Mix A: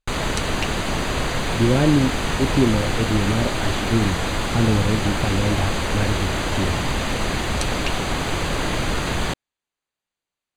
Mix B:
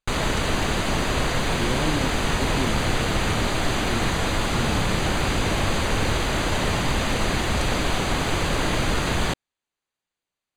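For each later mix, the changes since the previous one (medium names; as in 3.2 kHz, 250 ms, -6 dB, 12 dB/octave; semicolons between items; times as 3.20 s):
speech -11.5 dB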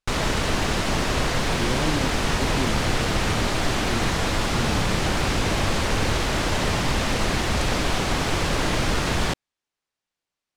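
background: remove Butterworth band-stop 5.4 kHz, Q 5.8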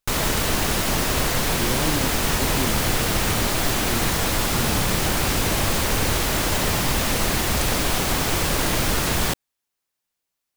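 master: remove distance through air 72 m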